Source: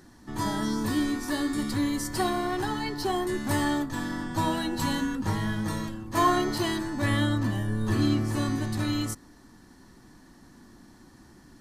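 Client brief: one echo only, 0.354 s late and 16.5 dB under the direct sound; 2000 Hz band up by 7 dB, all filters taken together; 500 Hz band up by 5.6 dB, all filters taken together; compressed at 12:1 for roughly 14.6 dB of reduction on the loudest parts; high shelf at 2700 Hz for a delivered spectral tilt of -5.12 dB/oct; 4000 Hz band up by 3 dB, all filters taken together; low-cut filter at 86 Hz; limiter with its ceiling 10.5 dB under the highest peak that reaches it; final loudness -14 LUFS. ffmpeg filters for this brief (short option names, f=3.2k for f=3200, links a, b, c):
-af "highpass=86,equalizer=f=500:t=o:g=8.5,equalizer=f=2k:t=o:g=8.5,highshelf=f=2.7k:g=-3.5,equalizer=f=4k:t=o:g=3.5,acompressor=threshold=-29dB:ratio=12,alimiter=level_in=6dB:limit=-24dB:level=0:latency=1,volume=-6dB,aecho=1:1:354:0.15,volume=24dB"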